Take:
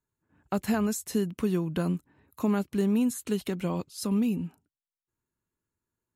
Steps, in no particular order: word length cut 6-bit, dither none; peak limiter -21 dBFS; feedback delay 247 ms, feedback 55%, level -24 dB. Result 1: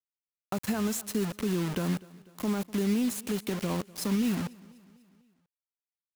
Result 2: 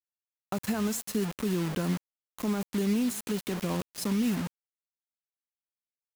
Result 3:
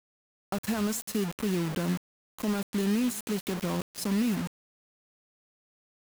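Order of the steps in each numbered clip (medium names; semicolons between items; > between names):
word length cut > feedback delay > peak limiter; feedback delay > word length cut > peak limiter; feedback delay > peak limiter > word length cut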